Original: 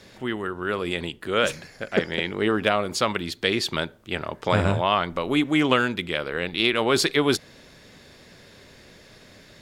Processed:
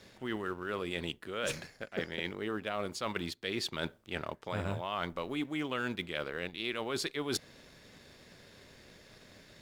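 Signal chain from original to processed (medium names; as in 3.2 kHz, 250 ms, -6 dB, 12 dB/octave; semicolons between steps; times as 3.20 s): companding laws mixed up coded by A; reverse; compression 10:1, threshold -32 dBFS, peak gain reduction 17.5 dB; reverse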